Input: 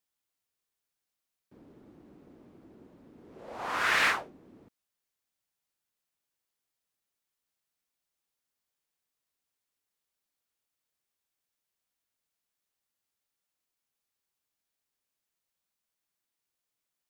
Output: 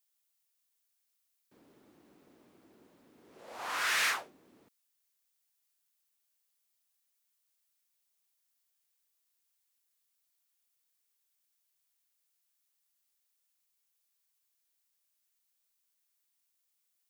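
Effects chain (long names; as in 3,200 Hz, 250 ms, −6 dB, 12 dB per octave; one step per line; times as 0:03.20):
soft clipping −25.5 dBFS, distortion −11 dB
spectral tilt +3 dB per octave
level −3 dB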